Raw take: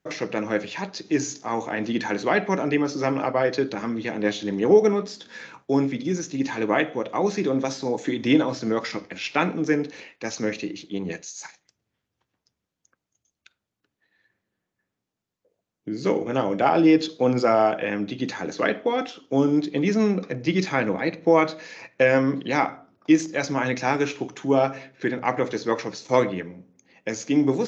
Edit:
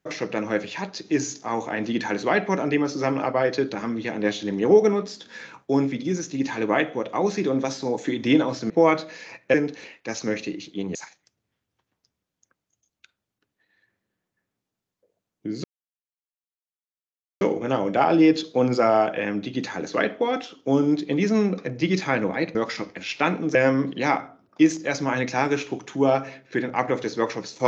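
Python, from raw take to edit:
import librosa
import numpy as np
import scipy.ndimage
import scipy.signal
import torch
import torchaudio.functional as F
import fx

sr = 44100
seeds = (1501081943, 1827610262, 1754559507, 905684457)

y = fx.edit(x, sr, fx.swap(start_s=8.7, length_s=1.0, other_s=21.2, other_length_s=0.84),
    fx.cut(start_s=11.11, length_s=0.26),
    fx.insert_silence(at_s=16.06, length_s=1.77), tone=tone)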